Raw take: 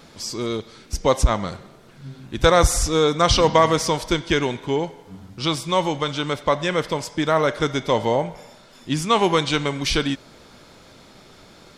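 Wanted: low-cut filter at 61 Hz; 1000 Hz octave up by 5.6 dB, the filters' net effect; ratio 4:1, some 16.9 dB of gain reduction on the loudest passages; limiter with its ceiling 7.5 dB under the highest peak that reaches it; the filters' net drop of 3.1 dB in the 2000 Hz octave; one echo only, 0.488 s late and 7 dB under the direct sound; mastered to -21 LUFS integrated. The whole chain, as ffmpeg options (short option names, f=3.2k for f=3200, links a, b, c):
-af "highpass=61,equalizer=f=1k:t=o:g=8.5,equalizer=f=2k:t=o:g=-7.5,acompressor=threshold=-29dB:ratio=4,alimiter=limit=-21.5dB:level=0:latency=1,aecho=1:1:488:0.447,volume=12dB"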